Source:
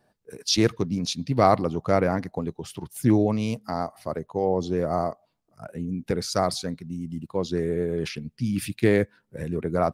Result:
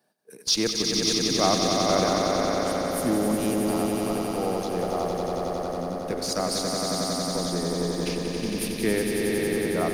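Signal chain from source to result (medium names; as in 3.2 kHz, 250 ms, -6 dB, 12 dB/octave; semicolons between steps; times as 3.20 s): high-pass 160 Hz 24 dB/octave; treble shelf 3.7 kHz +10 dB; band-stop 7.6 kHz, Q 13; in parallel at -12 dB: Schmitt trigger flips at -21 dBFS; on the sum: echo with a slow build-up 91 ms, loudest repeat 5, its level -5.5 dB; reverberation RT60 4.3 s, pre-delay 117 ms, DRR 12 dB; trim -6 dB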